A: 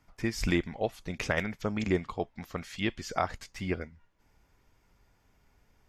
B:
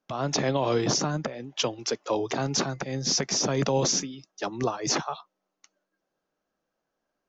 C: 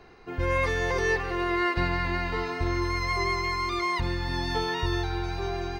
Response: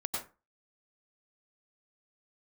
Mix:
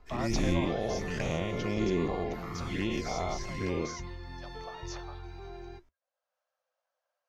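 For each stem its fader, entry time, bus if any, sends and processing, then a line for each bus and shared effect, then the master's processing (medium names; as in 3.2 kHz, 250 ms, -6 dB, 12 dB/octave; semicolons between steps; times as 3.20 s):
-4.0 dB, 0.00 s, no send, every event in the spectrogram widened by 240 ms; touch-sensitive flanger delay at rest 3.2 ms, full sweep at -20.5 dBFS
+1.5 dB, 0.00 s, no send, Chebyshev high-pass 500 Hz, order 10; auto duck -15 dB, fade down 1.10 s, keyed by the first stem
-16.0 dB, 0.00 s, send -6 dB, none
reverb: on, RT60 0.30 s, pre-delay 87 ms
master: treble shelf 7.6 kHz -5 dB; flange 0.95 Hz, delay 3.9 ms, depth 3.4 ms, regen -66%; bass shelf 320 Hz +5 dB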